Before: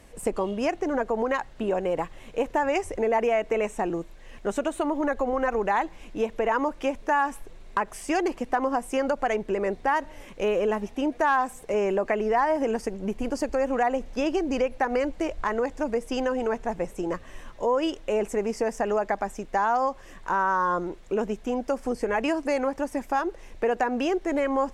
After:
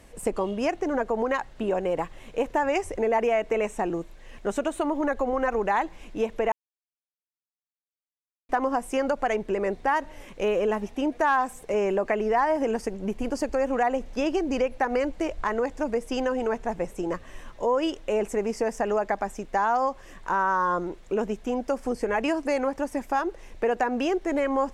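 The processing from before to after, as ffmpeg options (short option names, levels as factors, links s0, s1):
-filter_complex "[0:a]asplit=3[s0][s1][s2];[s0]atrim=end=6.52,asetpts=PTS-STARTPTS,afade=t=out:st=6.516:d=0.004:c=hsin[s3];[s1]atrim=start=6.52:end=8.49,asetpts=PTS-STARTPTS,volume=0[s4];[s2]atrim=start=8.49,asetpts=PTS-STARTPTS,afade=t=in:d=0.004:c=hsin[s5];[s3][s4][s5]concat=n=3:v=0:a=1"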